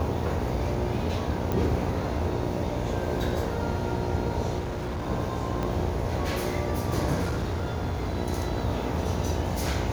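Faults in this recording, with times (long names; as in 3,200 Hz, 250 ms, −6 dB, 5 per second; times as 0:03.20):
mains buzz 60 Hz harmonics 16 −33 dBFS
0:01.52: click −15 dBFS
0:04.59–0:05.07: clipping −28 dBFS
0:05.63: click −18 dBFS
0:07.22–0:08.18: clipping −24.5 dBFS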